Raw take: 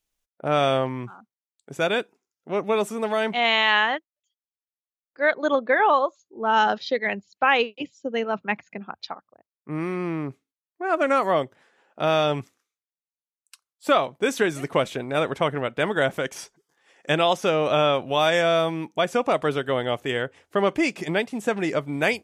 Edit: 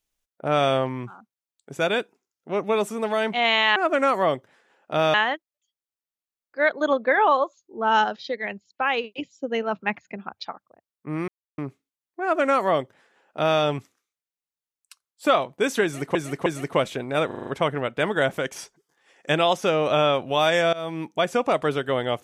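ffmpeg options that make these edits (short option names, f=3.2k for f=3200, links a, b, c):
-filter_complex "[0:a]asplit=15[a][b][c][d][e][f][g][h][i][j][k][l][m][n][o];[a]atrim=end=3.762[p];[b]atrim=start=10.838:end=12.222[q];[c]atrim=start=3.758:end=6.662[r];[d]atrim=start=6.658:end=7.662,asetpts=PTS-STARTPTS,volume=-4.5dB[s];[e]atrim=start=7.658:end=9.9,asetpts=PTS-STARTPTS,afade=t=out:st=2.238:d=0.004:c=hsin[t];[f]atrim=start=9.9:end=10.2,asetpts=PTS-STARTPTS,volume=0[u];[g]atrim=start=10.2:end=14.772,asetpts=PTS-STARTPTS,afade=t=in:d=0.004:c=hsin[v];[h]atrim=start=14.458:end=14.772[w];[i]atrim=start=14.458:end=15.312[x];[j]atrim=start=15.268:end=15.312[y];[k]atrim=start=15.268:end=15.312[z];[l]atrim=start=15.268:end=15.312[aa];[m]atrim=start=15.268:end=15.312[ab];[n]atrim=start=15.268:end=18.53,asetpts=PTS-STARTPTS,afade=t=out:st=3.258:d=0.004:c=hsin:silence=0.0841395[ac];[o]atrim=start=18.53,asetpts=PTS-STARTPTS,afade=t=in:d=0.29:silence=0.0841395[ad];[p][q]acrossfade=d=0.004:c1=hsin:c2=hsin[ae];[ae][r]acrossfade=d=0.004:c1=hsin:c2=hsin[af];[af][s]acrossfade=d=0.004:c1=hsin:c2=hsin[ag];[t][u][v]concat=n=3:v=0:a=1[ah];[ag][ah]acrossfade=d=0.004:c1=hsin:c2=hsin[ai];[ai][w]acrossfade=d=0.004:c1=hsin:c2=hsin[aj];[aj][x]acrossfade=d=0.004:c1=hsin:c2=hsin[ak];[ak][y]acrossfade=d=0.004:c1=hsin:c2=hsin[al];[al][z]acrossfade=d=0.004:c1=hsin:c2=hsin[am];[am][aa]acrossfade=d=0.004:c1=hsin:c2=hsin[an];[an][ab]acrossfade=d=0.004:c1=hsin:c2=hsin[ao];[ac][ad]concat=n=2:v=0:a=1[ap];[ao][ap]acrossfade=d=0.004:c1=hsin:c2=hsin"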